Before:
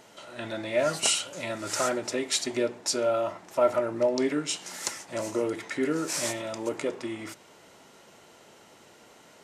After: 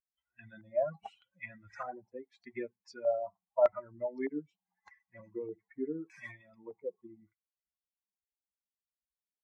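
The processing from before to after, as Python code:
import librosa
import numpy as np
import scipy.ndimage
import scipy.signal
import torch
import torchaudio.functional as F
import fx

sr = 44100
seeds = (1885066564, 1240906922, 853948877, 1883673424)

y = fx.bin_expand(x, sr, power=3.0)
y = fx.filter_lfo_lowpass(y, sr, shape='square', hz=0.82, low_hz=750.0, high_hz=2000.0, q=3.1)
y = F.gain(torch.from_numpy(y), -6.5).numpy()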